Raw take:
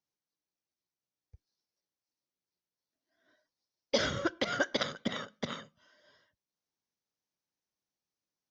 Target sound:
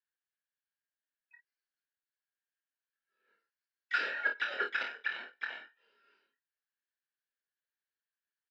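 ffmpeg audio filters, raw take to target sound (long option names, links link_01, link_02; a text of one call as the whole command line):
ffmpeg -i in.wav -filter_complex "[0:a]afftfilt=real='real(if(between(b,1,1012),(2*floor((b-1)/92)+1)*92-b,b),0)':imag='imag(if(between(b,1,1012),(2*floor((b-1)/92)+1)*92-b,b),0)*if(between(b,1,1012),-1,1)':win_size=2048:overlap=0.75,aeval=exprs='0.188*(cos(1*acos(clip(val(0)/0.188,-1,1)))-cos(1*PI/2))+0.00266*(cos(7*acos(clip(val(0)/0.188,-1,1)))-cos(7*PI/2))':channel_layout=same,asplit=3[link_01][link_02][link_03];[link_02]asetrate=22050,aresample=44100,atempo=2,volume=-17dB[link_04];[link_03]asetrate=58866,aresample=44100,atempo=0.749154,volume=-10dB[link_05];[link_01][link_04][link_05]amix=inputs=3:normalize=0,highpass=frequency=260:width=0.5412,highpass=frequency=260:width=1.3066,equalizer=frequency=310:width_type=q:width=4:gain=-6,equalizer=frequency=710:width_type=q:width=4:gain=-6,equalizer=frequency=1100:width_type=q:width=4:gain=-4,equalizer=frequency=1600:width_type=q:width=4:gain=10,equalizer=frequency=3000:width_type=q:width=4:gain=5,lowpass=frequency=4200:width=0.5412,lowpass=frequency=4200:width=1.3066,aecho=1:1:26|50:0.562|0.376,volume=-8dB" out.wav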